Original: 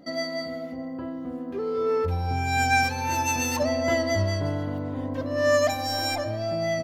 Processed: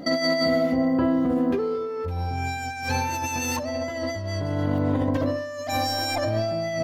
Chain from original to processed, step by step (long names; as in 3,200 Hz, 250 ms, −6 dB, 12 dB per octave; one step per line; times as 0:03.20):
compressor whose output falls as the input rises −33 dBFS, ratio −1
level +7 dB